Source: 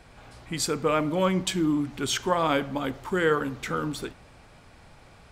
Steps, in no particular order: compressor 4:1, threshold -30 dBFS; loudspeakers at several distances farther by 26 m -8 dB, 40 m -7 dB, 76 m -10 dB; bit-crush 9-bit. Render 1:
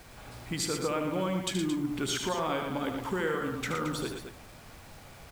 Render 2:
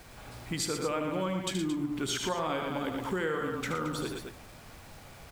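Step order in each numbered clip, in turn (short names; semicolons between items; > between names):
compressor > loudspeakers at several distances > bit-crush; loudspeakers at several distances > bit-crush > compressor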